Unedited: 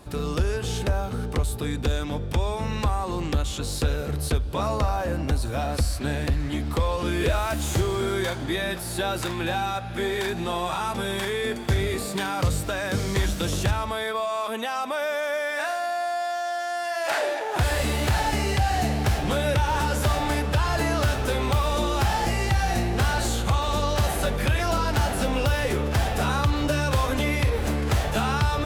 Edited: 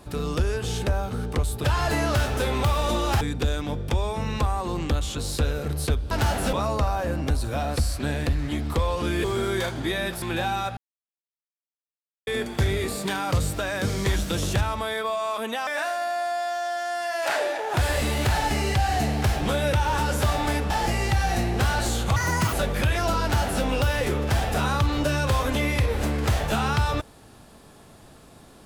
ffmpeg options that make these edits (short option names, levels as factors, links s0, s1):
-filter_complex "[0:a]asplit=13[s0][s1][s2][s3][s4][s5][s6][s7][s8][s9][s10][s11][s12];[s0]atrim=end=1.642[s13];[s1]atrim=start=20.518:end=22.092[s14];[s2]atrim=start=1.638:end=4.542[s15];[s3]atrim=start=24.858:end=25.282[s16];[s4]atrim=start=4.538:end=7.252[s17];[s5]atrim=start=7.878:end=8.862[s18];[s6]atrim=start=9.318:end=9.87,asetpts=PTS-STARTPTS,afade=t=out:st=0.548:d=0.004:c=hsin[s19];[s7]atrim=start=9.87:end=11.37,asetpts=PTS-STARTPTS,volume=0[s20];[s8]atrim=start=11.37:end=14.772,asetpts=PTS-STARTPTS,afade=t=in:d=0.004:c=hsin[s21];[s9]atrim=start=15.488:end=20.522[s22];[s10]atrim=start=22.088:end=23.554[s23];[s11]atrim=start=23.55:end=24.17,asetpts=PTS-STARTPTS,asetrate=73647,aresample=44100,atrim=end_sample=16372,asetpts=PTS-STARTPTS[s24];[s12]atrim=start=24.166[s25];[s13][s14]acrossfade=d=0.004:c1=hsin:c2=hsin[s26];[s26][s15]acrossfade=d=0.004:c1=hsin:c2=hsin[s27];[s27][s16]acrossfade=d=0.004:c1=hsin:c2=hsin[s28];[s28][s17]acrossfade=d=0.004:c1=hsin:c2=hsin[s29];[s29][s18]acrossfade=d=0.004:c1=hsin:c2=hsin[s30];[s19][s20][s21]concat=n=3:v=0:a=1[s31];[s30][s31]acrossfade=d=0.004:c1=hsin:c2=hsin[s32];[s32][s22]acrossfade=d=0.004:c1=hsin:c2=hsin[s33];[s33][s23]acrossfade=d=0.004:c1=hsin:c2=hsin[s34];[s34][s24]acrossfade=d=0.004:c1=hsin:c2=hsin[s35];[s35][s25]acrossfade=d=0.004:c1=hsin:c2=hsin"